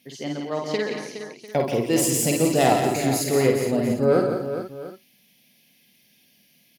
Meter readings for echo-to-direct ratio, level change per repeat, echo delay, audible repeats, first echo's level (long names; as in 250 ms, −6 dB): 0.0 dB, repeats not evenly spaced, 52 ms, 9, −3.0 dB